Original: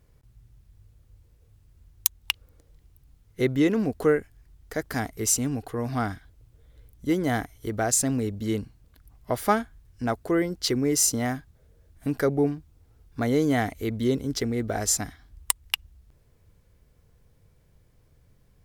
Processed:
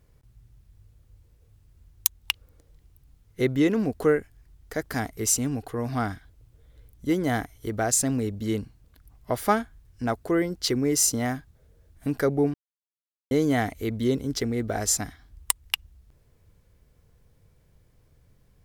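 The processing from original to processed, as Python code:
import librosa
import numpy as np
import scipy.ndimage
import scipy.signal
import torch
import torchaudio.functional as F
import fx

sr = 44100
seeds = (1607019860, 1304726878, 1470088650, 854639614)

y = fx.edit(x, sr, fx.silence(start_s=12.54, length_s=0.77), tone=tone)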